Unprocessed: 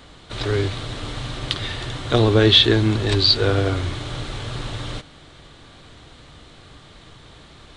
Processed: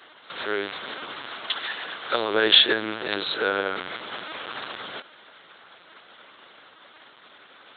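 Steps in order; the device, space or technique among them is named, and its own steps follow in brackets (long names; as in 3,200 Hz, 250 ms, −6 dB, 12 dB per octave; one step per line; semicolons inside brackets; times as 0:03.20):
0:01.26–0:02.31: low-shelf EQ 350 Hz −5.5 dB
talking toy (linear-prediction vocoder at 8 kHz; high-pass filter 500 Hz 12 dB per octave; parametric band 1,500 Hz +5.5 dB 0.51 octaves)
level −1.5 dB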